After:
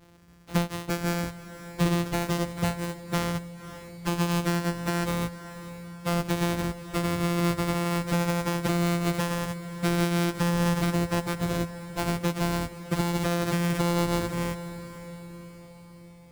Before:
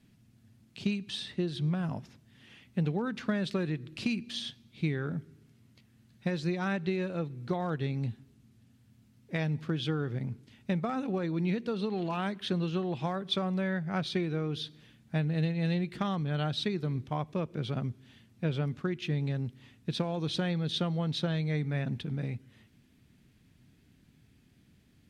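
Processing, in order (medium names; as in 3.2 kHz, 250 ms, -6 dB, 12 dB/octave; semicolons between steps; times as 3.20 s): sorted samples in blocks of 256 samples; plain phase-vocoder stretch 0.65×; on a send: echo that smears into a reverb 569 ms, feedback 50%, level -14 dB; on the sum: trim +8 dB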